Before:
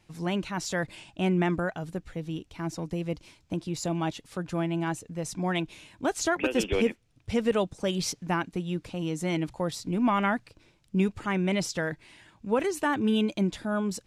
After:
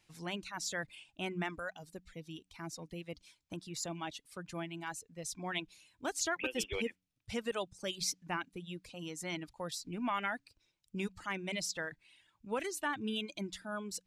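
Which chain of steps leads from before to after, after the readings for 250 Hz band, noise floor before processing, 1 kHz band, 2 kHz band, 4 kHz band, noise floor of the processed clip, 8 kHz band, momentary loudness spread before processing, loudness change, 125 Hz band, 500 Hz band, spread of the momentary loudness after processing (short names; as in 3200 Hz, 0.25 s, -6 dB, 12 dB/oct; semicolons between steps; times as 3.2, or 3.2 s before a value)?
-14.5 dB, -65 dBFS, -9.0 dB, -6.0 dB, -4.0 dB, -81 dBFS, -3.0 dB, 10 LU, -10.0 dB, -15.0 dB, -12.0 dB, 12 LU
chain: de-hum 92.64 Hz, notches 3; reverb removal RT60 1.4 s; tilt shelf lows -5 dB, about 1200 Hz; gain -7.5 dB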